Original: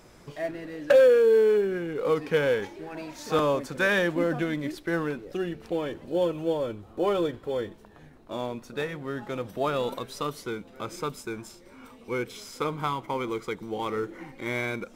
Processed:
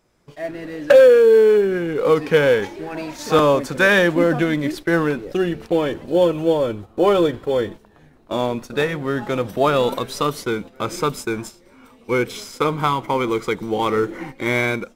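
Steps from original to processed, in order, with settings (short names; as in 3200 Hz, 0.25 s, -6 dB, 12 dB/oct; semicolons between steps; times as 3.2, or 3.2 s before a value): gate -43 dBFS, range -10 dB; AGC gain up to 13 dB; gain -2 dB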